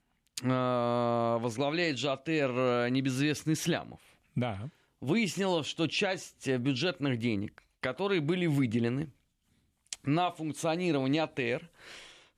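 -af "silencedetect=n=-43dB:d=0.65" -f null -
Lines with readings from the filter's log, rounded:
silence_start: 9.08
silence_end: 9.93 | silence_duration: 0.84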